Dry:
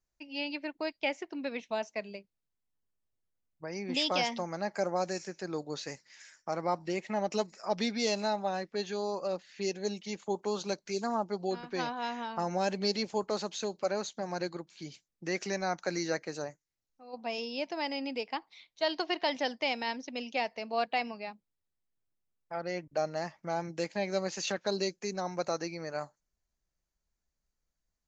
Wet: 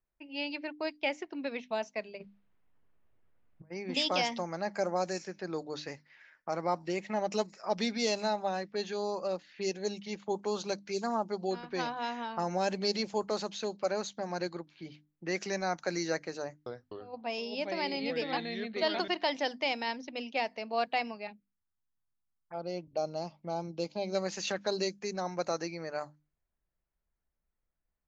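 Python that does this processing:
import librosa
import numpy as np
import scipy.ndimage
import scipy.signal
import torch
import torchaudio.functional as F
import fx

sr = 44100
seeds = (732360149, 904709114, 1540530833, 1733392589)

y = fx.over_compress(x, sr, threshold_db=-54.0, ratio=-0.5, at=(2.17, 3.7), fade=0.02)
y = fx.echo_pitch(y, sr, ms=251, semitones=-3, count=2, db_per_echo=-3.0, at=(16.41, 19.08))
y = fx.env_phaser(y, sr, low_hz=480.0, high_hz=1800.0, full_db=-37.5, at=(21.27, 24.15))
y = fx.env_lowpass(y, sr, base_hz=2500.0, full_db=-27.0)
y = fx.hum_notches(y, sr, base_hz=50, count=6)
y = fx.env_lowpass(y, sr, base_hz=2700.0, full_db=-30.0)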